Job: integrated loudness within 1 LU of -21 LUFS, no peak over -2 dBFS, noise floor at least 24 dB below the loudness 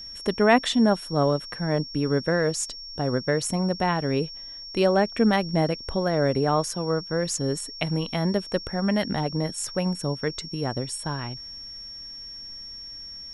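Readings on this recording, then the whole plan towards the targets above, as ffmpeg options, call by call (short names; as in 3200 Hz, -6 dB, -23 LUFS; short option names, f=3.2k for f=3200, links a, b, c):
steady tone 5500 Hz; tone level -37 dBFS; loudness -25.0 LUFS; peak -5.0 dBFS; loudness target -21.0 LUFS
-> -af "bandreject=f=5.5k:w=30"
-af "volume=4dB,alimiter=limit=-2dB:level=0:latency=1"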